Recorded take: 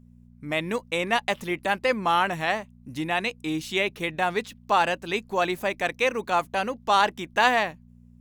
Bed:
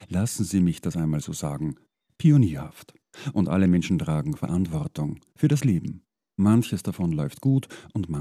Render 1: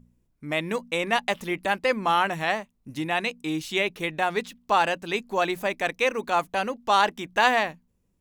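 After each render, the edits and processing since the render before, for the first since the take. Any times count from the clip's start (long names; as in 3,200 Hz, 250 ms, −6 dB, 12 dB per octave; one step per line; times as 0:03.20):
hum removal 60 Hz, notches 4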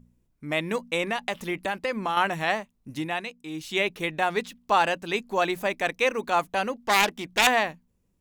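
0:01.06–0:02.17: downward compressor 5 to 1, threshold −23 dBFS
0:02.96–0:03.81: duck −8.5 dB, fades 0.32 s
0:06.86–0:07.47: phase distortion by the signal itself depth 0.41 ms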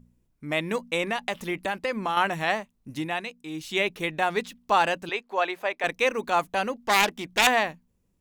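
0:05.09–0:05.84: three-way crossover with the lows and the highs turned down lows −22 dB, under 380 Hz, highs −13 dB, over 4,100 Hz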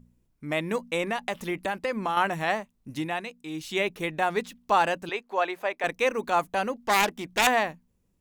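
dynamic equaliser 3,400 Hz, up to −4 dB, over −38 dBFS, Q 0.78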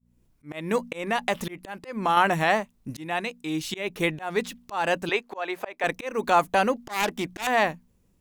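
in parallel at +0.5 dB: brickwall limiter −18 dBFS, peak gain reduction 10.5 dB
on the sum: volume swells 267 ms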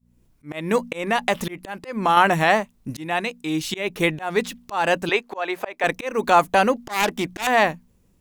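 level +4.5 dB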